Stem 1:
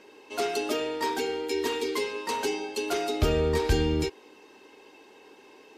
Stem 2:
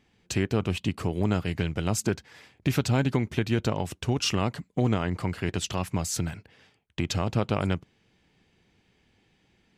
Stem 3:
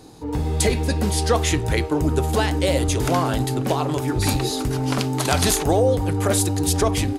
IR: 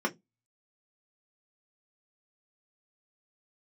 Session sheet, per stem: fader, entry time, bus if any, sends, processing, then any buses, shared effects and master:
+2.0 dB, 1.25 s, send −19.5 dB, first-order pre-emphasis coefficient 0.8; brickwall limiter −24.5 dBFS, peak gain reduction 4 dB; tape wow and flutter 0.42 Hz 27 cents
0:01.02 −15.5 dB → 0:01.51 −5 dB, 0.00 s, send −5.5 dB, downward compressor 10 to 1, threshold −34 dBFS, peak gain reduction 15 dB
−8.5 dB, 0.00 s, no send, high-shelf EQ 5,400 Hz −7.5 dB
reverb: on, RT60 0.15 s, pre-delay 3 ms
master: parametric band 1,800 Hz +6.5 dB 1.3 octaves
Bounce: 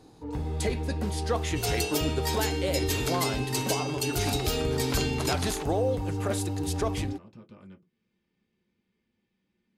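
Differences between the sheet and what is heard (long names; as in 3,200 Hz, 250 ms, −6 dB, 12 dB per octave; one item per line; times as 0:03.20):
stem 1 +2.0 dB → +8.5 dB
stem 2 −15.5 dB → −27.0 dB
master: missing parametric band 1,800 Hz +6.5 dB 1.3 octaves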